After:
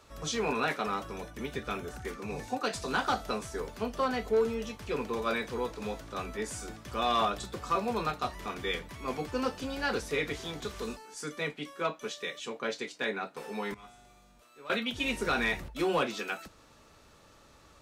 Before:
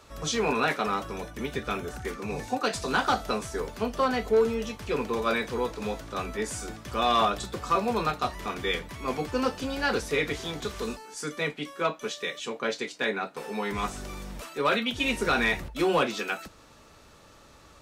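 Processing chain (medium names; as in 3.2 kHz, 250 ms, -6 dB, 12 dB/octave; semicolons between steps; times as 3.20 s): 13.74–14.70 s: feedback comb 120 Hz, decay 1.9 s, mix 90%; trim -4.5 dB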